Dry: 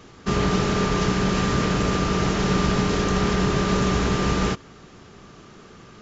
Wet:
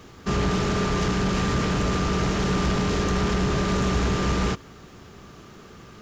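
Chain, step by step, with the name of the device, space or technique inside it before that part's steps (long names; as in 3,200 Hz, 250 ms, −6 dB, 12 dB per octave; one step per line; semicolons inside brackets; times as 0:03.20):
open-reel tape (soft clipping −18 dBFS, distortion −14 dB; parametric band 68 Hz +4.5 dB 1 octave; white noise bed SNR 46 dB)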